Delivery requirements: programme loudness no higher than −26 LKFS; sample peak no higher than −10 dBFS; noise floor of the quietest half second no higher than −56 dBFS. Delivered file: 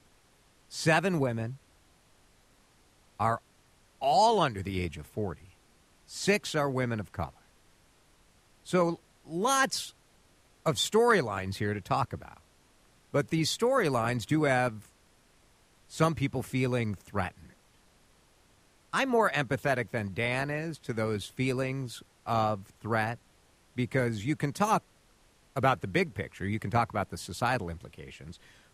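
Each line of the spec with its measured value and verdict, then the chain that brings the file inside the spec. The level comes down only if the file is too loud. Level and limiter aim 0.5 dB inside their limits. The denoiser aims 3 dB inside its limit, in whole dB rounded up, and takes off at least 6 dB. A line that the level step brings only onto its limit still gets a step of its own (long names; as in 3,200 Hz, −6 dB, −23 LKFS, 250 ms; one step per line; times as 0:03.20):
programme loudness −30.0 LKFS: in spec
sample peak −11.0 dBFS: in spec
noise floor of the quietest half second −64 dBFS: in spec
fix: no processing needed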